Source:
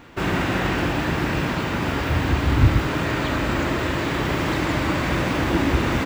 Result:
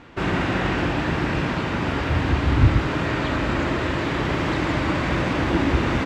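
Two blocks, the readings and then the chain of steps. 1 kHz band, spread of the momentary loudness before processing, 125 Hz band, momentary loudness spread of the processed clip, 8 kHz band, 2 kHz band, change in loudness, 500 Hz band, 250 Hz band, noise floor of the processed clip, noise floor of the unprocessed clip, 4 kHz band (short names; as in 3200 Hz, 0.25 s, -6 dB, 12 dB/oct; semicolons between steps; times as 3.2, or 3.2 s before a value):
-0.5 dB, 5 LU, 0.0 dB, 5 LU, -5.5 dB, -0.5 dB, -0.5 dB, 0.0 dB, 0.0 dB, -26 dBFS, -25 dBFS, -1.5 dB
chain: air absorption 68 m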